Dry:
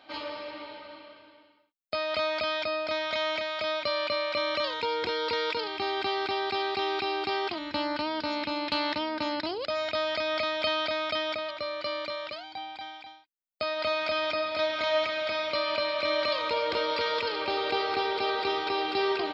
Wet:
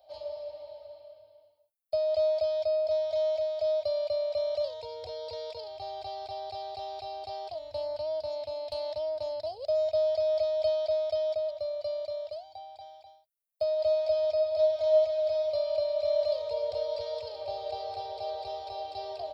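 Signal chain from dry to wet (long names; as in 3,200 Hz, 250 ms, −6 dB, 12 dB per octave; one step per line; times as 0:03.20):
drawn EQ curve 110 Hz 0 dB, 160 Hz −27 dB, 340 Hz −29 dB, 630 Hz +6 dB, 970 Hz −17 dB, 1,400 Hz −30 dB, 2,300 Hz −25 dB, 4,500 Hz −9 dB, 7,000 Hz −7 dB, 10,000 Hz +7 dB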